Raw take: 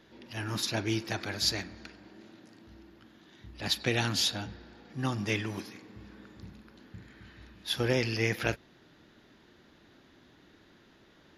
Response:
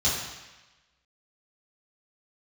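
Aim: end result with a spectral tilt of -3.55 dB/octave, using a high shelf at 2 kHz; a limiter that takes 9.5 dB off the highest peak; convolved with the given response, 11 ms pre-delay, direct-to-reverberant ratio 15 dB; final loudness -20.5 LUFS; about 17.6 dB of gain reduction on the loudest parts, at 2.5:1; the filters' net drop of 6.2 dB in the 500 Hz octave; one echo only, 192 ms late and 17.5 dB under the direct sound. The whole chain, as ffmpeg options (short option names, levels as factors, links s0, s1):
-filter_complex "[0:a]equalizer=f=500:t=o:g=-8.5,highshelf=f=2000:g=5,acompressor=threshold=0.00398:ratio=2.5,alimiter=level_in=3.35:limit=0.0631:level=0:latency=1,volume=0.299,aecho=1:1:192:0.133,asplit=2[s0][s1];[1:a]atrim=start_sample=2205,adelay=11[s2];[s1][s2]afir=irnorm=-1:irlink=0,volume=0.0447[s3];[s0][s3]amix=inputs=2:normalize=0,volume=23.7"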